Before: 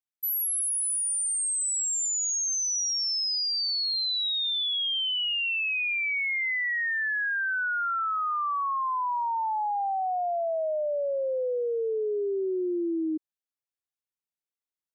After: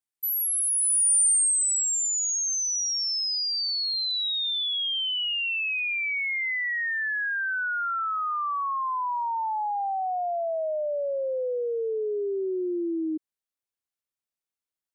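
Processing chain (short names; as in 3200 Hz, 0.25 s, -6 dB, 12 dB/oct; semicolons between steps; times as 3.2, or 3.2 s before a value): bell 9100 Hz +8 dB 0.34 oct, from 4.11 s +14.5 dB, from 5.79 s +2 dB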